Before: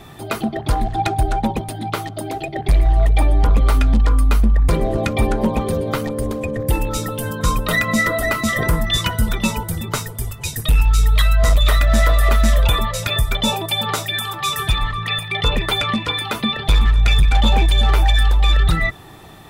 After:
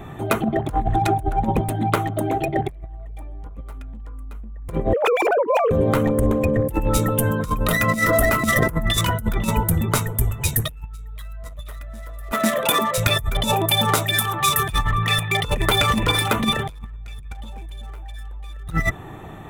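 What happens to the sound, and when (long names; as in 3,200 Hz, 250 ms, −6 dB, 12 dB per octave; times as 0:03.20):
0:04.93–0:05.71: three sine waves on the formant tracks
0:12.32–0:12.98: high-pass filter 210 Hz 24 dB per octave
0:15.38–0:16.07: delay throw 460 ms, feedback 30%, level −12.5 dB
whole clip: adaptive Wiener filter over 9 samples; drawn EQ curve 160 Hz 0 dB, 4,600 Hz −3 dB, 11,000 Hz +7 dB; compressor whose output falls as the input rises −21 dBFS, ratio −0.5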